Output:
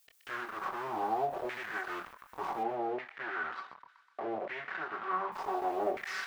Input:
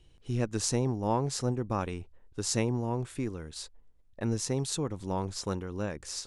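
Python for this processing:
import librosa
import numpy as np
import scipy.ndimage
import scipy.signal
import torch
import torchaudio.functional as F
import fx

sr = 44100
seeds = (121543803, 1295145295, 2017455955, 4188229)

y = fx.lower_of_two(x, sr, delay_ms=2.7)
y = fx.env_lowpass_down(y, sr, base_hz=590.0, full_db=-27.0)
y = fx.low_shelf(y, sr, hz=210.0, db=8.0)
y = y + 0.94 * np.pad(y, (int(5.3 * sr / 1000.0), 0))[:len(y)]
y = fx.over_compress(y, sr, threshold_db=-29.0, ratio=-1.0)
y = fx.quant_companded(y, sr, bits=2)
y = fx.chorus_voices(y, sr, voices=6, hz=0.35, base_ms=25, depth_ms=3.6, mix_pct=30)
y = fx.filter_lfo_bandpass(y, sr, shape='saw_down', hz=0.67, low_hz=590.0, high_hz=2000.0, q=4.3)
y = fx.dmg_noise_colour(y, sr, seeds[0], colour='blue', level_db=-75.0)
y = fx.bandpass_edges(y, sr, low_hz=120.0, high_hz=3000.0, at=(2.63, 5.32))
y = fx.echo_wet_highpass(y, sr, ms=125, feedback_pct=58, hz=1600.0, wet_db=-14.0)
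y = fx.end_taper(y, sr, db_per_s=150.0)
y = F.gain(torch.from_numpy(y), 8.0).numpy()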